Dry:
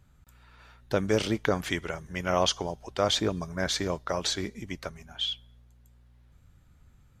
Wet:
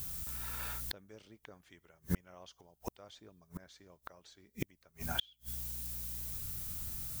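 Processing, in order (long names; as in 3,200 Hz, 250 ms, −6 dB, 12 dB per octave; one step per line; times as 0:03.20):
background noise violet −52 dBFS
gate with flip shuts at −29 dBFS, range −39 dB
level +9.5 dB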